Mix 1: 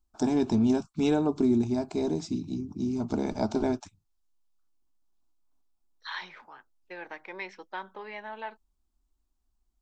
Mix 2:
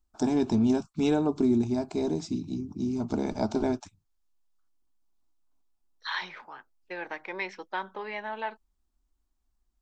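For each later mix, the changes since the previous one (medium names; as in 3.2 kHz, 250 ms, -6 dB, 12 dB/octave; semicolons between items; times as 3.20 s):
second voice +4.5 dB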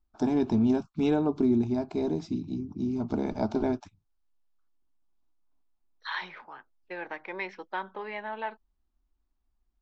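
master: add distance through air 150 m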